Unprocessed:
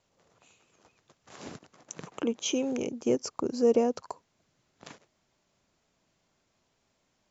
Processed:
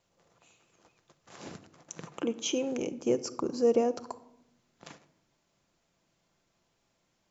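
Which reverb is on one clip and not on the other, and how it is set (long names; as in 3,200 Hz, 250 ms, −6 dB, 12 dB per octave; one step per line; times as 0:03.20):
rectangular room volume 2,400 cubic metres, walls furnished, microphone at 0.79 metres
level −1.5 dB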